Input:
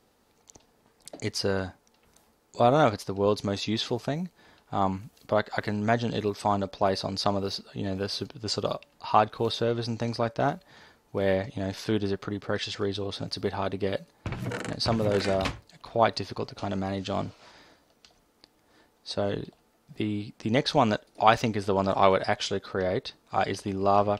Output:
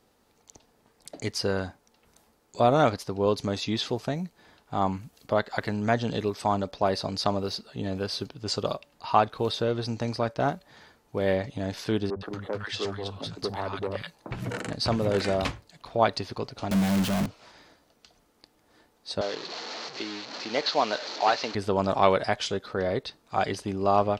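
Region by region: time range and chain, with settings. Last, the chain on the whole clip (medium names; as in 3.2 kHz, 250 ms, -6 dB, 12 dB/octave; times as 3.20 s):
12.10–14.31 s: peaking EQ 1 kHz +4.5 dB 0.88 oct + three bands offset in time mids, lows, highs 60/110 ms, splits 210/1100 Hz + transformer saturation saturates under 770 Hz
16.71–17.26 s: one-bit comparator + peaking EQ 200 Hz +13.5 dB 0.27 oct + three bands compressed up and down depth 40%
19.21–21.55 s: one-bit delta coder 32 kbps, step -30.5 dBFS + high-pass 440 Hz + peaking EQ 4.3 kHz +9.5 dB 0.25 oct
whole clip: none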